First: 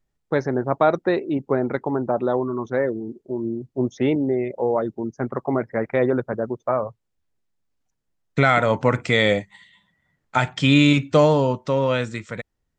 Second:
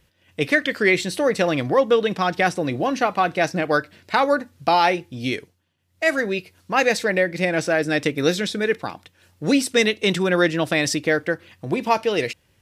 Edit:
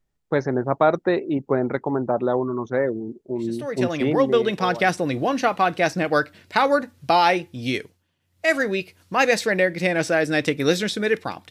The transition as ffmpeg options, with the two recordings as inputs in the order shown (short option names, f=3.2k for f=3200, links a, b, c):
-filter_complex "[0:a]apad=whole_dur=11.5,atrim=end=11.5,atrim=end=5.01,asetpts=PTS-STARTPTS[a];[1:a]atrim=start=0.93:end=9.08,asetpts=PTS-STARTPTS[b];[a][b]acrossfade=d=1.66:c1=qsin:c2=qsin"